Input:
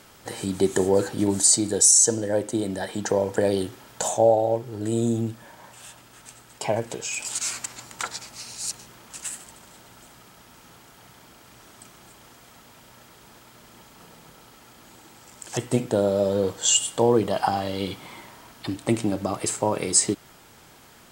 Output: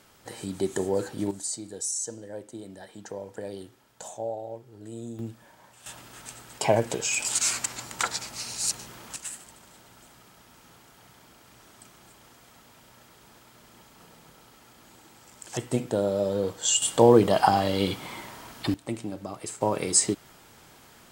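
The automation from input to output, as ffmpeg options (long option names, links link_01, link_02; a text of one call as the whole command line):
ffmpeg -i in.wav -af "asetnsamples=nb_out_samples=441:pad=0,asendcmd='1.31 volume volume -15dB;5.19 volume volume -8dB;5.86 volume volume 3dB;9.16 volume volume -4dB;16.82 volume volume 3dB;18.74 volume volume -10dB;19.61 volume volume -2dB',volume=-6.5dB" out.wav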